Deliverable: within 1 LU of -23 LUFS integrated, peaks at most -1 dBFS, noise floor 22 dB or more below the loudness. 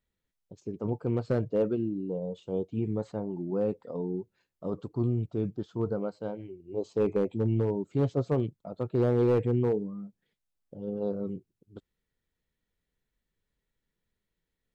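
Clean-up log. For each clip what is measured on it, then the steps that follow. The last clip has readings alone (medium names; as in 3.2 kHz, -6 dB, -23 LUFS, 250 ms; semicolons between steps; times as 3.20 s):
clipped samples 0.4%; clipping level -19.0 dBFS; loudness -31.0 LUFS; peak level -19.0 dBFS; loudness target -23.0 LUFS
-> clip repair -19 dBFS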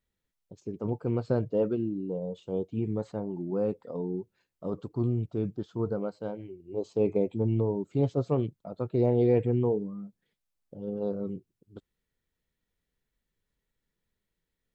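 clipped samples 0.0%; loudness -30.5 LUFS; peak level -13.0 dBFS; loudness target -23.0 LUFS
-> trim +7.5 dB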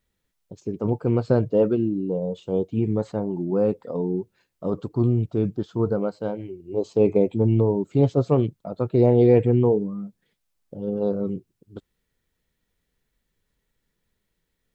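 loudness -23.0 LUFS; peak level -5.5 dBFS; noise floor -77 dBFS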